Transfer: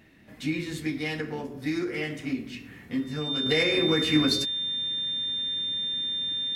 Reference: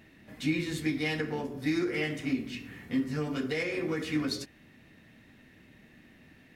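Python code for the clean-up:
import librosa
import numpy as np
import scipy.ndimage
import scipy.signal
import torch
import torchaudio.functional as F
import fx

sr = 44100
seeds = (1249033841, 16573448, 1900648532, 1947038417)

y = fx.notch(x, sr, hz=3600.0, q=30.0)
y = fx.fix_level(y, sr, at_s=3.46, step_db=-7.5)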